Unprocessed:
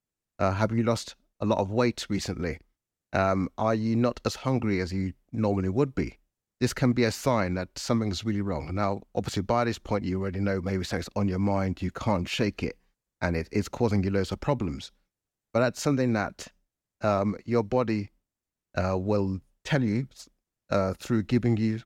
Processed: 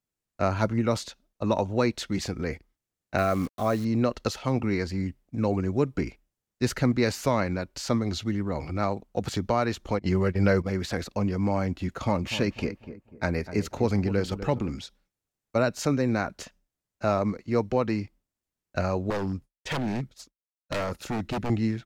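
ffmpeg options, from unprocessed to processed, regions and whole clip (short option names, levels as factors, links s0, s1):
-filter_complex "[0:a]asettb=1/sr,asplit=3[s0][s1][s2];[s0]atrim=end=3.184[s3];[s1]atrim=start=3.18:end=3.85,asetpts=PTS-STARTPTS,afade=t=in:d=0.004:c=qsin,afade=t=out:st=0.666:d=0.004:c=qsin,acrusher=bits=8:dc=4:mix=0:aa=0.000001,asuperstop=centerf=910:order=20:qfactor=6.8,aeval=exprs='sgn(val(0))*max(abs(val(0))-0.00158,0)':c=same[s4];[s2]atrim=start=3.846[s5];[s3][s4]acrossfade=d=0.004:c1=hsin:c2=qsin[s6];[s6][s5]acrossfade=d=0.004:c1=qsin:c2=hsin,asettb=1/sr,asplit=3[s7][s8][s9];[s7]atrim=end=9.994[s10];[s8]atrim=start=9.99:end=10.66,asetpts=PTS-STARTPTS,afade=t=in:d=0.004:c=qsin,afade=t=out:st=0.666:d=0.004:c=qsin,equalizer=f=260:t=o:w=0.27:g=-12,acontrast=69,agate=range=0.0891:threshold=0.0398:ratio=16:release=100:detection=peak[s11];[s9]atrim=start=10.656[s12];[s10][s11]acrossfade=d=0.004:c1=hsin:c2=qsin[s13];[s13][s12]acrossfade=d=0.004:c1=qsin:c2=hsin,asettb=1/sr,asplit=3[s14][s15][s16];[s14]atrim=end=12.014[s17];[s15]atrim=start=12.01:end=14.7,asetpts=PTS-STARTPTS,afade=t=in:d=0.004:c=qsin,afade=t=out:st=2.686:d=0.004:c=qsin,bandreject=f=990:w=23,asplit=2[s18][s19];[s19]adelay=247,lowpass=f=1200:p=1,volume=0.251,asplit=2[s20][s21];[s21]adelay=247,lowpass=f=1200:p=1,volume=0.38,asplit=2[s22][s23];[s23]adelay=247,lowpass=f=1200:p=1,volume=0.38,asplit=2[s24][s25];[s25]adelay=247,lowpass=f=1200:p=1,volume=0.38[s26];[s18][s20][s22][s24][s26]amix=inputs=5:normalize=0,atrim=end_sample=118629[s27];[s16]atrim=start=14.696[s28];[s17][s27]acrossfade=d=0.004:c1=hsin:c2=qsin[s29];[s29][s28]acrossfade=d=0.004:c1=qsin:c2=hsin,asettb=1/sr,asplit=3[s30][s31][s32];[s30]atrim=end=19.104[s33];[s31]atrim=start=19.1:end=21.5,asetpts=PTS-STARTPTS,afade=t=in:d=0.004:c=qsin,afade=t=out:st=2.396:d=0.004:c=qsin,agate=range=0.0224:threshold=0.00282:ratio=3:release=100:detection=peak,aeval=exprs='0.0708*(abs(mod(val(0)/0.0708+3,4)-2)-1)':c=same[s34];[s32]atrim=start=21.496[s35];[s33][s34]acrossfade=d=0.004:c1=hsin:c2=qsin[s36];[s36][s35]acrossfade=d=0.004:c1=qsin:c2=hsin"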